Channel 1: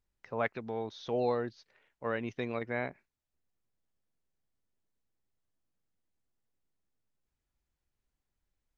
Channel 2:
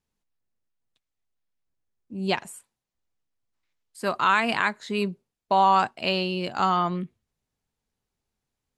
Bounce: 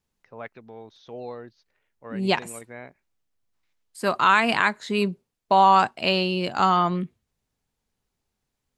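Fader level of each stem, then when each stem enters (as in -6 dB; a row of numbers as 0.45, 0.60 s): -6.0, +3.0 dB; 0.00, 0.00 s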